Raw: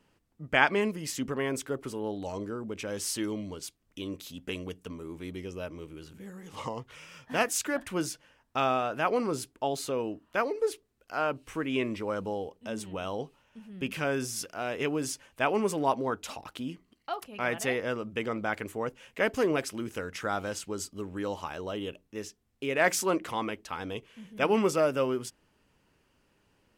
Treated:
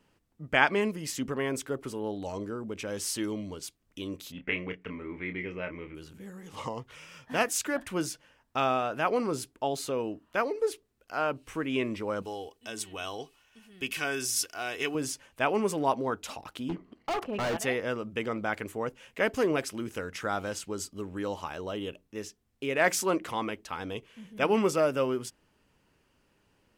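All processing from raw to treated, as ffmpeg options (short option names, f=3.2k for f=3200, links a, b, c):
-filter_complex "[0:a]asettb=1/sr,asplit=3[a][b][c];[a]atrim=end=4.324[d];[b]atrim=start=4.32:end=5.95,asetpts=PTS-STARTPTS,afade=t=in:d=0.004:c=qsin,afade=t=out:st=1.626:d=0.004:c=qsin,lowpass=f=2.1k:t=q:w=6.6,asplit=2[e][f];[f]adelay=28,volume=-7dB[g];[e][g]amix=inputs=2:normalize=0,atrim=end_sample=71883[h];[c]atrim=start=5.946[i];[d][h]acrossfade=d=0.004:c1=hsin:c2=qsin[j];[j][i]acrossfade=d=0.004:c1=qsin:c2=hsin,asettb=1/sr,asplit=3[k][l][m];[k]atrim=end=12.224[n];[l]atrim=start=12.22:end=14.95,asetpts=PTS-STARTPTS,afade=t=in:d=0.004:c=qsin,afade=t=out:st=2.726:d=0.004:c=qsin,tiltshelf=f=1.5k:g=-6.5,aecho=1:1:2.7:0.46,atrim=end_sample=120393[o];[m]atrim=start=14.946[p];[n][o]acrossfade=d=0.004:c1=hsin:c2=qsin[q];[q][p]acrossfade=d=0.004:c1=qsin:c2=hsin,asettb=1/sr,asplit=3[r][s][t];[r]atrim=end=16.694[u];[s]atrim=start=16.69:end=17.57,asetpts=PTS-STARTPTS,afade=t=in:d=0.004:c=qsin,afade=t=out:st=0.876:d=0.004:c=qsin,tiltshelf=f=1.3k:g=10,asplit=2[v][w];[w]highpass=f=720:p=1,volume=17dB,asoftclip=type=tanh:threshold=-14dB[x];[v][x]amix=inputs=2:normalize=0,lowpass=f=2.8k:p=1,volume=-6dB,asoftclip=type=hard:threshold=-28dB[y];[t]atrim=start=17.566[z];[u][y]acrossfade=d=0.004:c1=hsin:c2=qsin[aa];[aa][z]acrossfade=d=0.004:c1=qsin:c2=hsin"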